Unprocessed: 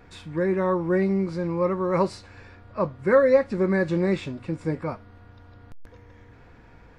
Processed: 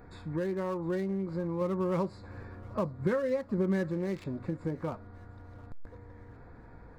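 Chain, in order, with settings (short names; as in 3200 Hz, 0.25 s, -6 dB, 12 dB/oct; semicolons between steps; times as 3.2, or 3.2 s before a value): Wiener smoothing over 15 samples; high shelf 5100 Hz +10 dB; compressor 6:1, threshold -30 dBFS, peak gain reduction 16.5 dB; 1.61–3.89 bell 170 Hz +5.5 dB 2.1 oct; thinning echo 0.709 s, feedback 58%, high-pass 1200 Hz, level -19 dB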